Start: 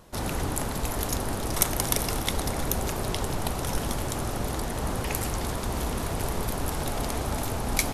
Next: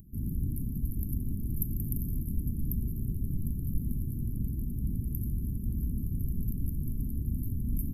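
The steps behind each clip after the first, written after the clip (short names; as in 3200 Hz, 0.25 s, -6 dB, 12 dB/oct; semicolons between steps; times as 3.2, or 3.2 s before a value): inverse Chebyshev band-stop 590–7400 Hz, stop band 50 dB; upward compressor, threshold -47 dBFS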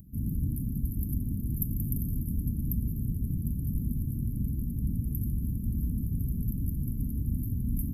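notch comb 370 Hz; gain +3 dB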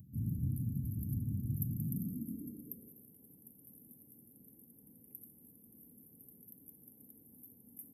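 high-pass sweep 110 Hz -> 650 Hz, 1.61–3.06; gain -8.5 dB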